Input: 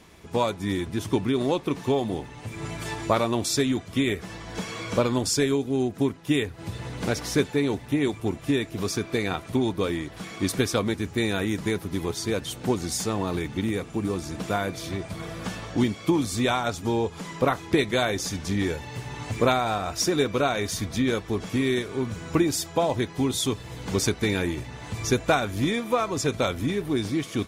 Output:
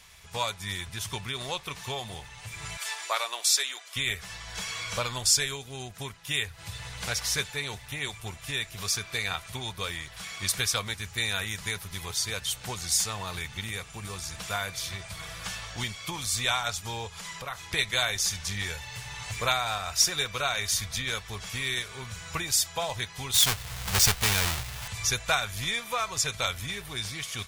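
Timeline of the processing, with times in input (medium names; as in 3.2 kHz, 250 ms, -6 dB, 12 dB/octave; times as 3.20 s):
2.77–3.96 s: Bessel high-pass 560 Hz, order 6
17.07–17.73 s: compression 2:1, threshold -32 dBFS
23.34–24.88 s: square wave that keeps the level
whole clip: amplifier tone stack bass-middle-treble 10-0-10; trim +5.5 dB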